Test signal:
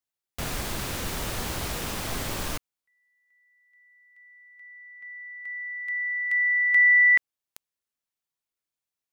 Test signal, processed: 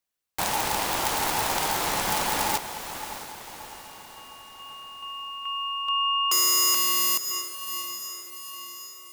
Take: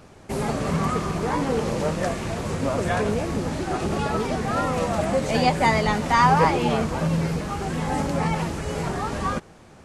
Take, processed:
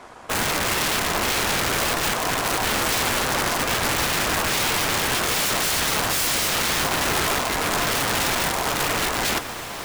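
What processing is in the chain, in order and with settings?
wrap-around overflow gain 22.5 dB
feedback delay with all-pass diffusion 629 ms, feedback 52%, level −10.5 dB
ring modulation 860 Hz
level +7.5 dB

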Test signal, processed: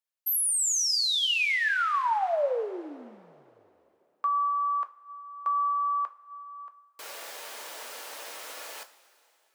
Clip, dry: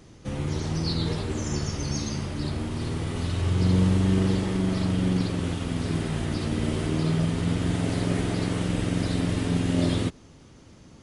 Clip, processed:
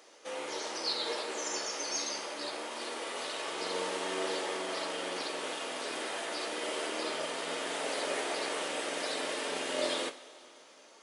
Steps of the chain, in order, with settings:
high-pass filter 460 Hz 24 dB per octave
coupled-rooms reverb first 0.28 s, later 3 s, from −18 dB, DRR 6.5 dB

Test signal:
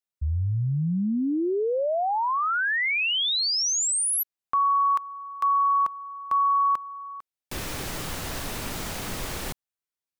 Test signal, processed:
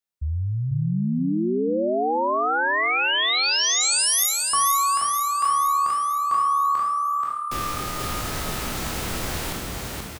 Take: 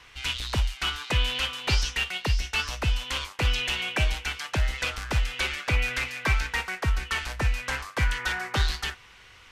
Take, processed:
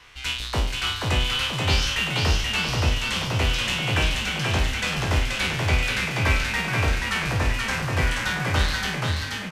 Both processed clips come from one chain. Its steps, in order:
peak hold with a decay on every bin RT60 0.53 s
echo with shifted repeats 480 ms, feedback 54%, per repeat +37 Hz, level −3 dB

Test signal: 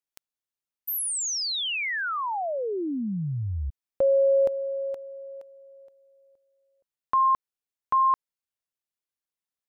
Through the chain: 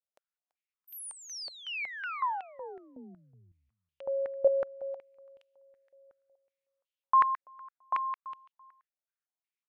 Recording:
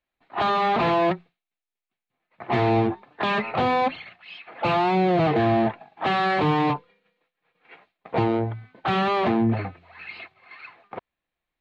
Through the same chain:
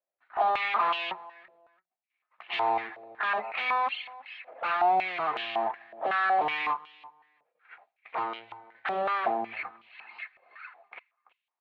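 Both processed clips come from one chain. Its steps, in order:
spectral tilt +2 dB per octave
on a send: repeating echo 335 ms, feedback 19%, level −21.5 dB
on the sum: band-pass on a step sequencer 5.4 Hz 580–2,900 Hz
level +4 dB

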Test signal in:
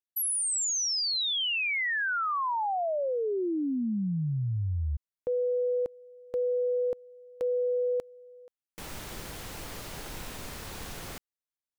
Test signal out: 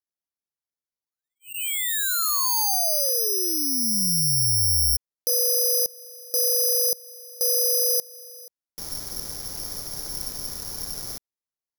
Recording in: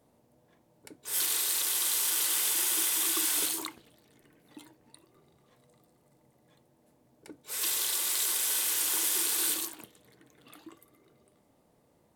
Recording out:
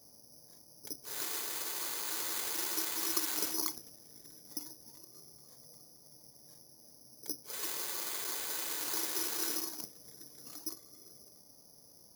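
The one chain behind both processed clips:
low-pass filter 1,200 Hz 6 dB per octave
dynamic equaliser 310 Hz, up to −4 dB, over −41 dBFS, Q 0.96
bad sample-rate conversion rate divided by 8×, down filtered, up zero stuff

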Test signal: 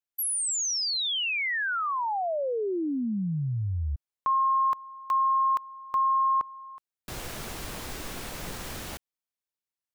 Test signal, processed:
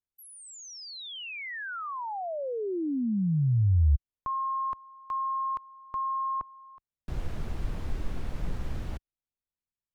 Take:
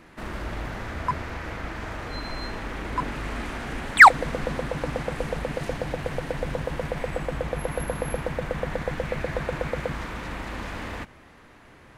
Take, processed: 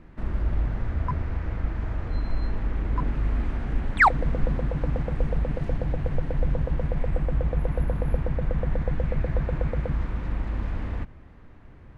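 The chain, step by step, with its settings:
RIAA equalisation playback
level −6.5 dB

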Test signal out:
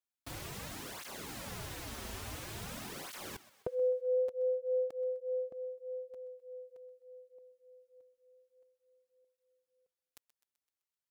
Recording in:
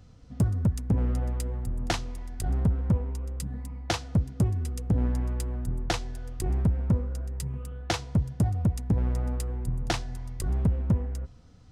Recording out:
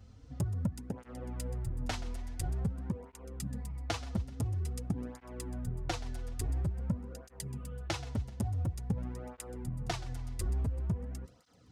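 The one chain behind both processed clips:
downward compressor, threshold −28 dBFS
feedback echo with a high-pass in the loop 128 ms, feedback 56%, high-pass 330 Hz, level −16.5 dB
through-zero flanger with one copy inverted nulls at 0.48 Hz, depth 7 ms

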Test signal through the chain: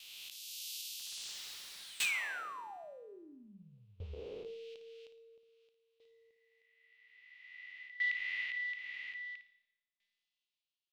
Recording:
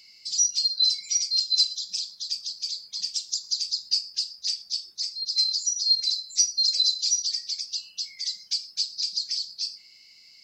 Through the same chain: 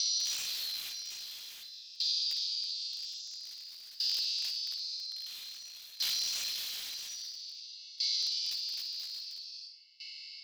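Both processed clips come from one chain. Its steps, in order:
peak hold with a rise ahead of every peak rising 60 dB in 1.88 s
drawn EQ curve 410 Hz 0 dB, 1,800 Hz −3 dB, 2,700 Hz +15 dB, 4,900 Hz +6 dB, 9,300 Hz −4 dB
four-comb reverb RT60 0.74 s, combs from 29 ms, DRR 17 dB
wrap-around overflow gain 8.5 dB
brickwall limiter −15.5 dBFS
downward compressor 4 to 1, threshold −26 dBFS
parametric band 3,900 Hz +13.5 dB 2.2 octaves
tuned comb filter 200 Hz, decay 1.6 s, mix 70%
on a send: flutter between parallel walls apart 9.5 metres, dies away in 0.36 s
on the sum: tremolo with a ramp in dB decaying 0.5 Hz, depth 20 dB
level −5 dB

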